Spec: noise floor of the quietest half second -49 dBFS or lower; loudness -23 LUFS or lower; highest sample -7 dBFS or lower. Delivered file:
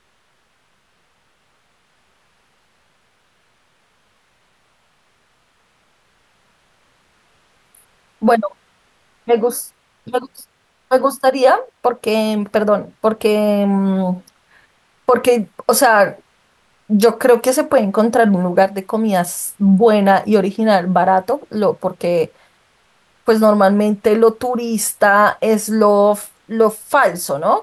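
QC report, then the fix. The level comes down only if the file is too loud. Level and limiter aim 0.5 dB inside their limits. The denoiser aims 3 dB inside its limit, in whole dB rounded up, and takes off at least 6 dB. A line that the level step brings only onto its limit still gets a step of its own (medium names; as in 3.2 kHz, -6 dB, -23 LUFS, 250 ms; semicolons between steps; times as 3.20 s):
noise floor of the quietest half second -60 dBFS: pass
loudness -15.5 LUFS: fail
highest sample -2.0 dBFS: fail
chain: trim -8 dB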